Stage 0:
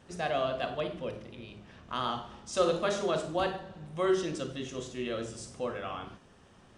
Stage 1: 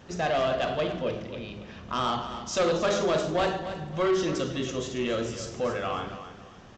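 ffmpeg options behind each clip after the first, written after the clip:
-af "aresample=16000,asoftclip=type=tanh:threshold=-27.5dB,aresample=44100,aecho=1:1:275|550|825:0.266|0.0825|0.0256,volume=7.5dB"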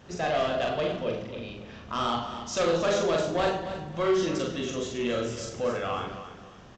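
-filter_complex "[0:a]asplit=2[a][b];[b]adelay=42,volume=-3.5dB[c];[a][c]amix=inputs=2:normalize=0,volume=-2dB"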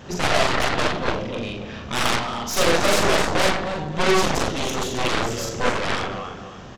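-af "aeval=exprs='0.158*(cos(1*acos(clip(val(0)/0.158,-1,1)))-cos(1*PI/2))+0.0501*(cos(6*acos(clip(val(0)/0.158,-1,1)))-cos(6*PI/2))+0.0794*(cos(7*acos(clip(val(0)/0.158,-1,1)))-cos(7*PI/2))':c=same,volume=2.5dB"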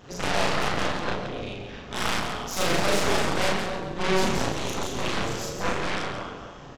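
-filter_complex "[0:a]asplit=2[a][b];[b]asplit=4[c][d][e][f];[c]adelay=119,afreqshift=-150,volume=-12.5dB[g];[d]adelay=238,afreqshift=-300,volume=-19.8dB[h];[e]adelay=357,afreqshift=-450,volume=-27.2dB[i];[f]adelay=476,afreqshift=-600,volume=-34.5dB[j];[g][h][i][j]amix=inputs=4:normalize=0[k];[a][k]amix=inputs=2:normalize=0,tremolo=f=190:d=0.947,asplit=2[l][m];[m]aecho=0:1:34.99|172:0.794|0.447[n];[l][n]amix=inputs=2:normalize=0,volume=-4dB"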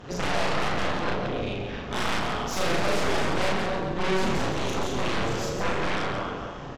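-filter_complex "[0:a]aemphasis=mode=reproduction:type=cd,asplit=2[a][b];[b]acompressor=threshold=-30dB:ratio=6,volume=-1dB[c];[a][c]amix=inputs=2:normalize=0,asoftclip=type=tanh:threshold=-17dB"

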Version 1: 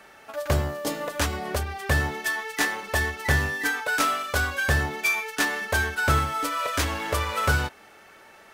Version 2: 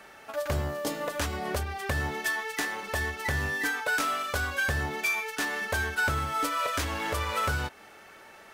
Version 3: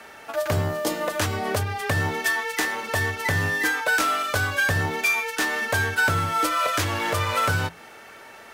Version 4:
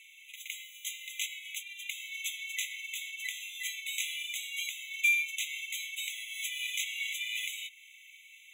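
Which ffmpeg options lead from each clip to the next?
-af "alimiter=limit=-18.5dB:level=0:latency=1:release=269"
-af "bandreject=f=50:t=h:w=6,bandreject=f=100:t=h:w=6,bandreject=f=150:t=h:w=6,afreqshift=20,volume=6dB"
-af "afftfilt=real='re*eq(mod(floor(b*sr/1024/2000),2),1)':imag='im*eq(mod(floor(b*sr/1024/2000),2),1)':win_size=1024:overlap=0.75,volume=-3dB"

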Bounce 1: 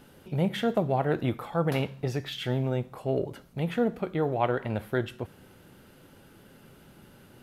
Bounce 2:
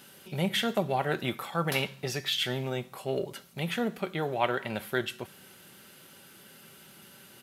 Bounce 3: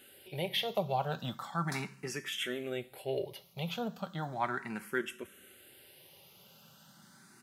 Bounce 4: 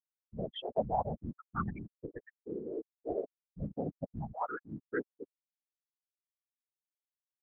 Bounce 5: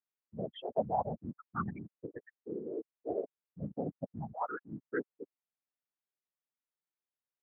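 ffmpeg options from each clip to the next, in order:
-af "highpass=98,tiltshelf=f=1.5k:g=-7.5,aecho=1:1:5.2:0.33,volume=2.5dB"
-filter_complex "[0:a]asplit=2[a][b];[b]afreqshift=0.36[c];[a][c]amix=inputs=2:normalize=1,volume=-2.5dB"
-af "aemphasis=mode=reproduction:type=75fm,afftfilt=real='re*gte(hypot(re,im),0.0794)':imag='im*gte(hypot(re,im),0.0794)':win_size=1024:overlap=0.75,afftfilt=real='hypot(re,im)*cos(2*PI*random(0))':imag='hypot(re,im)*sin(2*PI*random(1))':win_size=512:overlap=0.75,volume=5.5dB"
-af "highpass=110,lowpass=2.4k"

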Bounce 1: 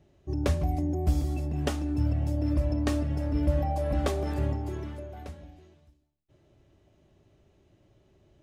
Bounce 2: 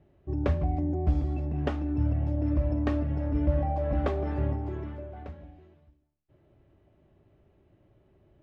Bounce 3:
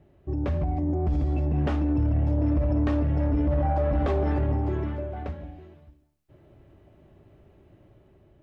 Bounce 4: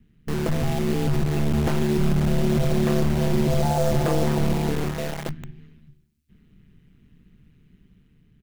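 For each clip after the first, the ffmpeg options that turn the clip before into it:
-af "lowpass=2.2k"
-af "alimiter=limit=-22.5dB:level=0:latency=1:release=38,dynaudnorm=f=780:g=3:m=4dB,asoftclip=type=tanh:threshold=-20.5dB,volume=4dB"
-filter_complex "[0:a]asplit=6[a][b][c][d][e][f];[b]adelay=95,afreqshift=32,volume=-23dB[g];[c]adelay=190,afreqshift=64,volume=-27dB[h];[d]adelay=285,afreqshift=96,volume=-31dB[i];[e]adelay=380,afreqshift=128,volume=-35dB[j];[f]adelay=475,afreqshift=160,volume=-39.1dB[k];[a][g][h][i][j][k]amix=inputs=6:normalize=0,acrossover=split=240|1500[l][m][n];[m]acrusher=bits=5:mix=0:aa=0.000001[o];[l][o][n]amix=inputs=3:normalize=0,aeval=exprs='val(0)*sin(2*PI*75*n/s)':c=same,volume=6dB"

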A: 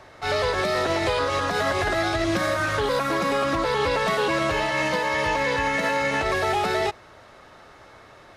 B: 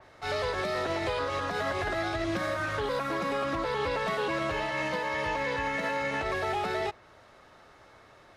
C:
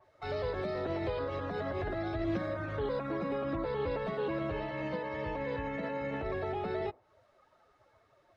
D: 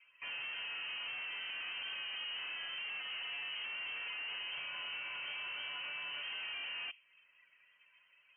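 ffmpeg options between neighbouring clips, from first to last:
-af "adynamicequalizer=threshold=0.00794:dfrequency=4200:dqfactor=0.7:tfrequency=4200:tqfactor=0.7:attack=5:release=100:ratio=0.375:range=2.5:mode=cutabove:tftype=highshelf,volume=-7dB"
-filter_complex "[0:a]afftdn=nr=16:nf=-45,acrossover=split=580[a][b];[b]acompressor=threshold=-43dB:ratio=5[c];[a][c]amix=inputs=2:normalize=0"
-af "asoftclip=type=hard:threshold=-40dB,lowpass=f=2.7k:t=q:w=0.5098,lowpass=f=2.7k:t=q:w=0.6013,lowpass=f=2.7k:t=q:w=0.9,lowpass=f=2.7k:t=q:w=2.563,afreqshift=-3200,volume=-1dB"

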